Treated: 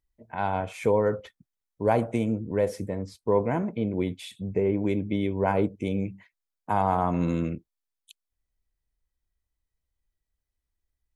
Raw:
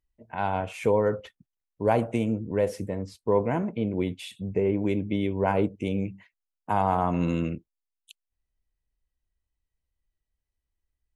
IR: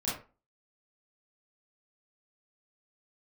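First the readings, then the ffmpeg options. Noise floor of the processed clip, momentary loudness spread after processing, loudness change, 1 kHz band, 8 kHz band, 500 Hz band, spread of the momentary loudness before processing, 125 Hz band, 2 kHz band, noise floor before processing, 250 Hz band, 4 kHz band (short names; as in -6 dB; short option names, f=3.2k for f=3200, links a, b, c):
-85 dBFS, 9 LU, 0.0 dB, 0.0 dB, n/a, 0.0 dB, 9 LU, 0.0 dB, -0.5 dB, under -85 dBFS, 0.0 dB, -1.5 dB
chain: -af "bandreject=f=2.8k:w=8.3"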